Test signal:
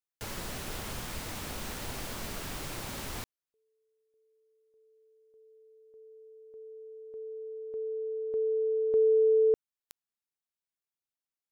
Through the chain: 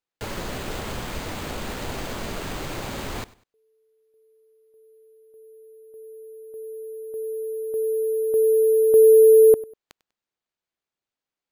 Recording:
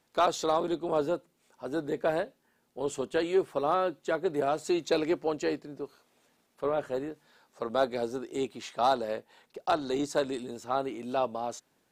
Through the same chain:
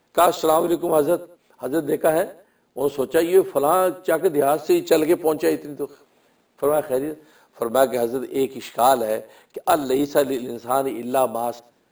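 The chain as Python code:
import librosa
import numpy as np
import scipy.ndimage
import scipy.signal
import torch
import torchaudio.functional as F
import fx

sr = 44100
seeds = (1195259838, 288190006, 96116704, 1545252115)

y = fx.peak_eq(x, sr, hz=450.0, db=3.5, octaves=1.8)
y = fx.echo_feedback(y, sr, ms=98, feedback_pct=31, wet_db=-20.5)
y = np.repeat(scipy.signal.resample_poly(y, 1, 4), 4)[:len(y)]
y = y * 10.0 ** (7.0 / 20.0)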